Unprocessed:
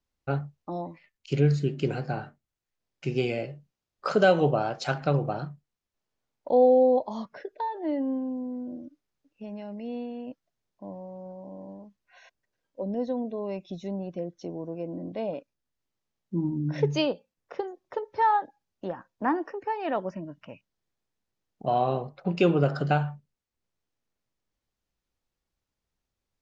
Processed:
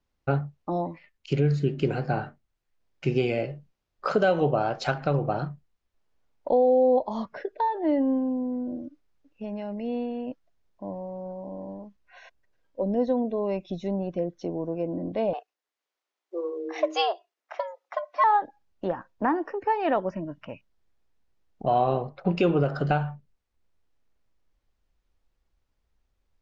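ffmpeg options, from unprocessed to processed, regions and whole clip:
ffmpeg -i in.wav -filter_complex "[0:a]asettb=1/sr,asplit=3[link_01][link_02][link_03];[link_01]atrim=end=15.334[link_04];[link_02]atrim=start=15.33:end=18.24,asetpts=PTS-STARTPTS,afade=type=in:duration=0.004:curve=qsin,afade=type=out:start_time=2.906:duration=0.004:curve=qsin,highpass=frequency=660:poles=1,afreqshift=170[link_05];[link_03]atrim=start=18.236[link_06];[link_04][link_05]acrossfade=duration=0.004:curve1=hsin:curve2=qsin[link_07];[link_07][link_06]acrossfade=duration=0.004:curve1=qsin:curve2=hsin,lowpass=frequency=3100:poles=1,asubboost=boost=3:cutoff=70,alimiter=limit=-19dB:level=0:latency=1:release=373,volume=6dB" out.wav

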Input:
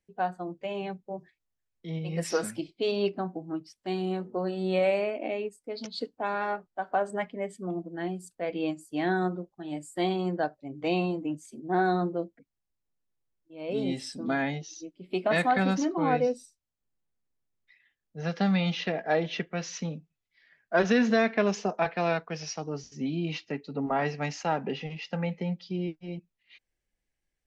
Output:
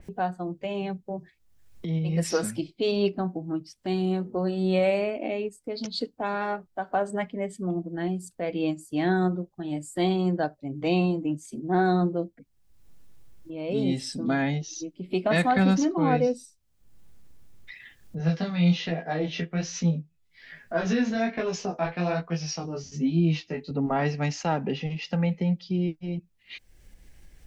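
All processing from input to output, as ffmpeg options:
ffmpeg -i in.wav -filter_complex "[0:a]asettb=1/sr,asplit=3[link_01][link_02][link_03];[link_01]atrim=end=18.184[link_04];[link_02]atrim=start=18.18:end=23.71,asetpts=PTS-STARTPTS,afade=type=in:duration=0.004:curve=qsin,afade=type=out:start_time=5.526:duration=0.004:curve=qsin,acompressor=threshold=-26dB:ratio=2:attack=3.2:release=140:knee=1:detection=peak,asplit=2[link_05][link_06];[link_06]adelay=12,volume=-3dB[link_07];[link_05][link_07]amix=inputs=2:normalize=0,atrim=end_sample=243873,flanger=delay=17.5:depth=6.1:speed=1.2[link_08];[link_03]atrim=start=23.706[link_09];[link_04][link_08]acrossfade=duration=0.004:curve1=hsin:curve2=qsin[link_10];[link_10][link_09]acrossfade=duration=0.004:curve1=qsin:curve2=hsin,lowshelf=frequency=210:gain=11.5,acompressor=mode=upward:threshold=-29dB:ratio=2.5,adynamicequalizer=threshold=0.00562:dfrequency=3100:dqfactor=0.7:tfrequency=3100:tqfactor=0.7:attack=5:release=100:ratio=0.375:range=2:mode=boostabove:tftype=highshelf" out.wav

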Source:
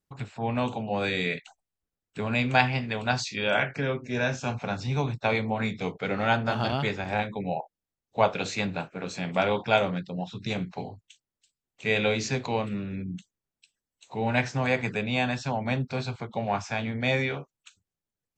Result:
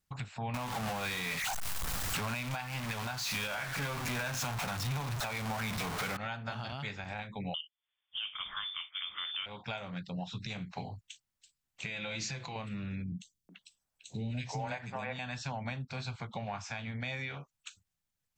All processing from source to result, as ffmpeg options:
ffmpeg -i in.wav -filter_complex "[0:a]asettb=1/sr,asplit=3[link_01][link_02][link_03];[link_01]atrim=end=0.544[link_04];[link_02]atrim=start=0.54:end=6.17,asetpts=PTS-STARTPTS,afade=type=in:duration=0.004:curve=qsin,afade=type=out:start_time=5.626:duration=0.004:curve=qsin,aeval=exprs='val(0)+0.5*0.0891*sgn(val(0))':channel_layout=same,equalizer=frequency=1000:width_type=o:width=1.3:gain=5.5[link_05];[link_03]atrim=start=6.166[link_06];[link_04][link_05]acrossfade=duration=0.004:curve1=hsin:curve2=qsin[link_07];[link_07][link_06]acrossfade=duration=0.004:curve1=qsin:curve2=hsin,asettb=1/sr,asplit=3[link_08][link_09][link_10];[link_08]atrim=end=7.544[link_11];[link_09]atrim=start=7.54:end=9.46,asetpts=PTS-STARTPTS,afade=type=in:duration=0.004:curve=qsin,afade=type=out:start_time=1.916:duration=0.004:curve=qsin,highpass=170,acontrast=80,lowpass=frequency=3100:width_type=q:width=0.5098,lowpass=frequency=3100:width_type=q:width=0.6013,lowpass=frequency=3100:width_type=q:width=0.9,lowpass=frequency=3100:width_type=q:width=2.563,afreqshift=-3700[link_12];[link_10]atrim=start=9.456[link_13];[link_11][link_12]acrossfade=duration=0.004:curve1=hsin:curve2=qsin[link_14];[link_14][link_13]acrossfade=duration=0.004:curve1=qsin:curve2=hsin,asettb=1/sr,asplit=3[link_15][link_16][link_17];[link_15]atrim=end=11.864[link_18];[link_16]atrim=start=11.86:end=12.56,asetpts=PTS-STARTPTS,afade=type=in:duration=0.004:curve=qsin,afade=type=out:start_time=0.696:duration=0.004:curve=qsin,aecho=1:1:5.9:0.67,atrim=end_sample=30870,acompressor=threshold=-30dB:ratio=3:attack=3.2:release=140:knee=1:detection=peak[link_19];[link_17]atrim=start=12.556[link_20];[link_18][link_19]acrossfade=duration=0.004:curve1=hsin:curve2=qsin[link_21];[link_21][link_20]acrossfade=duration=0.004:curve1=qsin:curve2=hsin,asettb=1/sr,asplit=3[link_22][link_23][link_24];[link_22]atrim=end=13.124[link_25];[link_23]atrim=start=13.12:end=15.19,asetpts=PTS-STARTPTS,afade=type=in:duration=0.004:curve=qsin,afade=type=out:start_time=2.066:duration=0.004:curve=qsin,equalizer=frequency=590:width=0.67:gain=7,acrossover=split=360|2800[link_26][link_27][link_28];[link_28]adelay=30[link_29];[link_27]adelay=370[link_30];[link_26][link_30][link_29]amix=inputs=3:normalize=0,atrim=end_sample=91287[link_31];[link_24]atrim=start=15.186[link_32];[link_25][link_31]acrossfade=duration=0.004:curve1=hsin:curve2=qsin[link_33];[link_33][link_32]acrossfade=duration=0.004:curve1=qsin:curve2=hsin,equalizer=frequency=380:width=0.86:gain=-11.5,acompressor=threshold=-41dB:ratio=3,alimiter=level_in=7.5dB:limit=-24dB:level=0:latency=1:release=303,volume=-7.5dB,volume=4.5dB" out.wav

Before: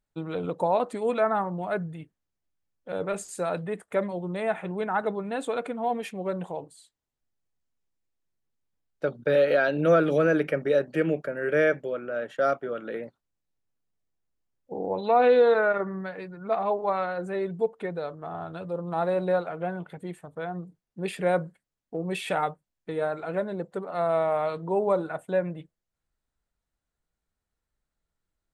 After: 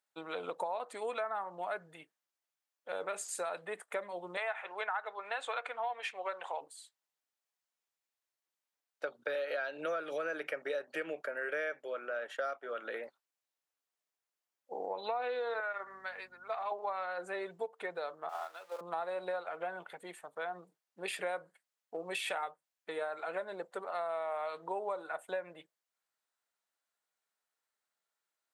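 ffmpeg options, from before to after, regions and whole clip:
ffmpeg -i in.wav -filter_complex "[0:a]asettb=1/sr,asplit=3[link_01][link_02][link_03];[link_01]atrim=end=4.374[link_04];[link_02]atrim=start=4.37:end=6.61,asetpts=PTS-STARTPTS,afade=type=in:duration=0.004:curve=qsin,afade=type=out:start_time=2.236:duration=0.004:curve=qsin,highpass=520,lowpass=6800,equalizer=frequency=1800:width=0.46:gain=6.5[link_05];[link_03]atrim=start=6.606[link_06];[link_04][link_05]acrossfade=duration=0.004:curve1=hsin:curve2=qsin[link_07];[link_07][link_06]acrossfade=duration=0.004:curve1=qsin:curve2=hsin,asettb=1/sr,asplit=3[link_08][link_09][link_10];[link_08]atrim=end=15.604[link_11];[link_09]atrim=start=15.6:end=16.72,asetpts=PTS-STARTPTS,afade=type=in:duration=0.004:curve=qsin,afade=type=out:start_time=1.116:duration=0.004:curve=qsin,highpass=frequency=1100:poles=1,aeval=exprs='val(0)+0.00708*(sin(2*PI*50*n/s)+sin(2*PI*2*50*n/s)/2+sin(2*PI*3*50*n/s)/3+sin(2*PI*4*50*n/s)/4+sin(2*PI*5*50*n/s)/5)':channel_layout=same[link_12];[link_10]atrim=start=16.716[link_13];[link_11][link_12]acrossfade=duration=0.004:curve1=hsin:curve2=qsin[link_14];[link_14][link_13]acrossfade=duration=0.004:curve1=qsin:curve2=hsin,asettb=1/sr,asplit=3[link_15][link_16][link_17];[link_15]atrim=end=18.294[link_18];[link_16]atrim=start=18.29:end=18.81,asetpts=PTS-STARTPTS,afade=type=in:duration=0.004:curve=qsin,afade=type=out:start_time=0.516:duration=0.004:curve=qsin,aeval=exprs='val(0)+0.5*0.00562*sgn(val(0))':channel_layout=same,highpass=590,agate=range=-7dB:threshold=-38dB:ratio=16:release=100:detection=peak[link_19];[link_17]atrim=start=18.806[link_20];[link_18][link_19]acrossfade=duration=0.004:curve1=hsin:curve2=qsin[link_21];[link_21][link_20]acrossfade=duration=0.004:curve1=qsin:curve2=hsin,highpass=710,acompressor=threshold=-35dB:ratio=6,volume=1dB" out.wav

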